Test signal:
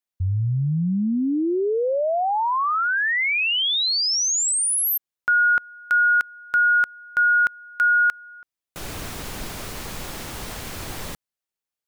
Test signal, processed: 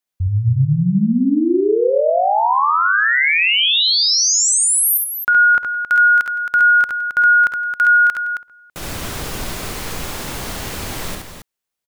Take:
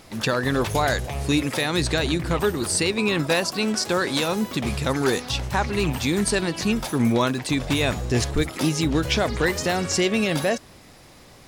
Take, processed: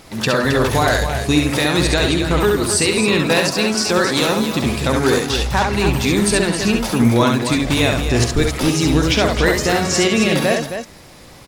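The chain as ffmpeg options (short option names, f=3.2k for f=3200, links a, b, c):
-af "aecho=1:1:51|53|68|165|269:0.141|0.224|0.631|0.126|0.398,volume=4.5dB"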